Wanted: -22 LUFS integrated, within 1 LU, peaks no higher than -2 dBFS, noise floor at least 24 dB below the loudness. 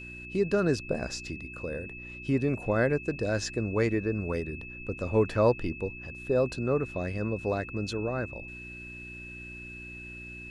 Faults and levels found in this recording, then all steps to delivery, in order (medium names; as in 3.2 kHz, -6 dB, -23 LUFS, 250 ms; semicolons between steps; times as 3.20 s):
hum 60 Hz; highest harmonic 360 Hz; hum level -46 dBFS; steady tone 2.6 kHz; tone level -42 dBFS; loudness -30.0 LUFS; peak level -12.0 dBFS; loudness target -22.0 LUFS
-> de-hum 60 Hz, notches 6; band-stop 2.6 kHz, Q 30; trim +8 dB